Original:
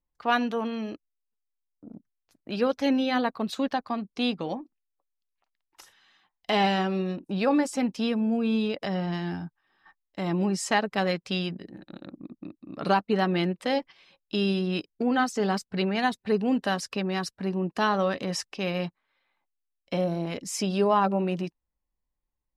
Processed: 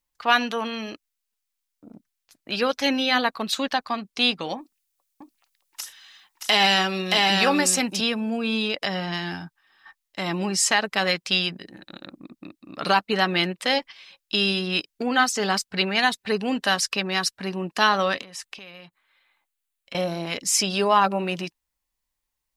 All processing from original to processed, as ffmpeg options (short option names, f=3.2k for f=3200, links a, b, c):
-filter_complex "[0:a]asettb=1/sr,asplit=3[a][b][c];[a]atrim=end=4.584[d];[b]atrim=start=4.58:end=8.01,asetpts=PTS-STARTPTS,afade=t=in:d=0.004:c=qsin,afade=t=out:st=3.426:d=0.004:c=qsin,highshelf=f=4.3k:g=8,aecho=1:1:624:0.668,atrim=end_sample=151263[e];[c]atrim=start=8.006[f];[d][e]acrossfade=d=0.004:c1=hsin:c2=qsin[g];[g][f]acrossfade=d=0.004:c1=qsin:c2=hsin,asettb=1/sr,asplit=3[h][i][j];[h]atrim=end=18.214[k];[i]atrim=start=18.21:end=19.95,asetpts=PTS-STARTPTS,afade=t=in:d=0.004:c=qsin,afade=t=out:st=1.736:d=0.004:c=qsin,equalizer=f=5.4k:t=o:w=0.52:g=-6.5,acompressor=threshold=-42dB:ratio=16:attack=3.2:release=140:knee=1:detection=peak[l];[j]atrim=start=19.946[m];[k][l]acrossfade=d=0.004:c1=hsin:c2=qsin[n];[n][m]acrossfade=d=0.004:c1=qsin:c2=hsin,tiltshelf=f=970:g=-7.5,alimiter=level_in=10dB:limit=-1dB:release=50:level=0:latency=1,volume=-5dB"